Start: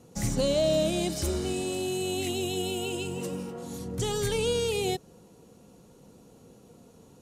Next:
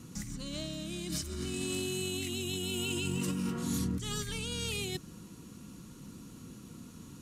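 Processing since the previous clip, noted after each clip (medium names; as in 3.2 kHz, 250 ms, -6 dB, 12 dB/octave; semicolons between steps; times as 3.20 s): high-order bell 590 Hz -14.5 dB 1.3 oct; compressor with a negative ratio -38 dBFS, ratio -1; trim +2 dB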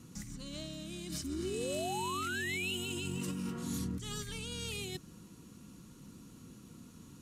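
painted sound rise, 1.24–2.77 s, 260–3100 Hz -34 dBFS; trim -4.5 dB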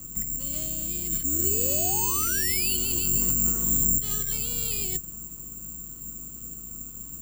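octave divider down 2 oct, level +3 dB; careless resampling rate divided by 6×, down filtered, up zero stuff; trim +2.5 dB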